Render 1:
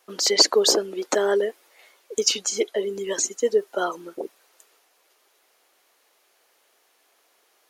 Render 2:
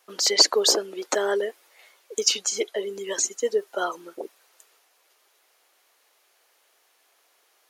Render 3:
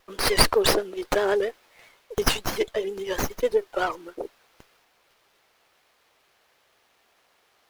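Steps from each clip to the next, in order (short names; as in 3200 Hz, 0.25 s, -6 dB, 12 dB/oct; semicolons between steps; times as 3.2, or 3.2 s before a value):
low shelf 310 Hz -10 dB
vibrato 7.6 Hz 74 cents; running maximum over 5 samples; gain +1.5 dB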